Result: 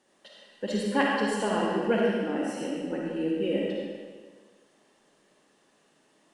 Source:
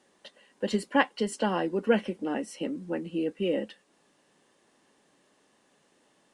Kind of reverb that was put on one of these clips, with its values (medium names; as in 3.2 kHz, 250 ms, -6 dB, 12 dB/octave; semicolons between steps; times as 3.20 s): algorithmic reverb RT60 1.6 s, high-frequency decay 0.9×, pre-delay 15 ms, DRR -3.5 dB; trim -3.5 dB